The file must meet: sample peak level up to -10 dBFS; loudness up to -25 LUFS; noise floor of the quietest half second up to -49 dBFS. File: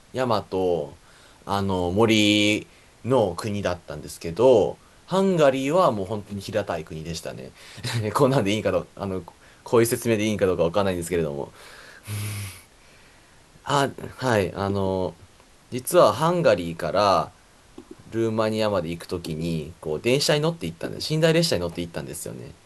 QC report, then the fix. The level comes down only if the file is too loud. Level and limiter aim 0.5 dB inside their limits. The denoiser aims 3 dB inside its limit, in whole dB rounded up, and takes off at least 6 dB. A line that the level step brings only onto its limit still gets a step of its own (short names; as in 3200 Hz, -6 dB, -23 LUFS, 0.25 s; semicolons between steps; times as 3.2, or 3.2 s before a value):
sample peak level -4.5 dBFS: fail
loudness -23.5 LUFS: fail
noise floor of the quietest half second -53 dBFS: OK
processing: gain -2 dB; limiter -10.5 dBFS